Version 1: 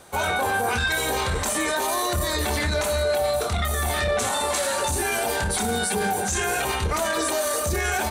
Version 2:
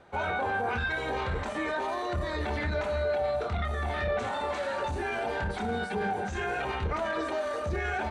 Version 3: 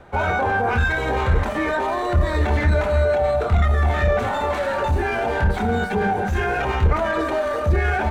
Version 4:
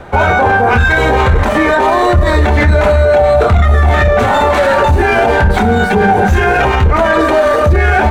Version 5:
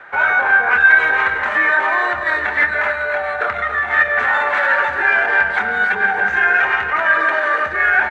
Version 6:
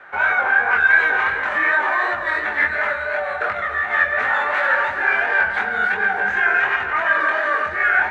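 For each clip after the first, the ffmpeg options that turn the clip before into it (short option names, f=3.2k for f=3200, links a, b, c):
-af "lowpass=2.4k,bandreject=f=1.1k:w=16,volume=-5.5dB"
-filter_complex "[0:a]acrossover=split=510|2900[a][b][c];[a]lowshelf=f=90:g=10.5[d];[c]aeval=exprs='max(val(0),0)':c=same[e];[d][b][e]amix=inputs=3:normalize=0,volume=9dB"
-af "alimiter=level_in=15dB:limit=-1dB:release=50:level=0:latency=1,volume=-1dB"
-filter_complex "[0:a]bandpass=f=1.7k:t=q:w=3.1:csg=0,asplit=2[a][b];[b]aecho=0:1:169.1|282.8:0.251|0.316[c];[a][c]amix=inputs=2:normalize=0,volume=3.5dB"
-af "flanger=delay=18.5:depth=6.2:speed=2.8"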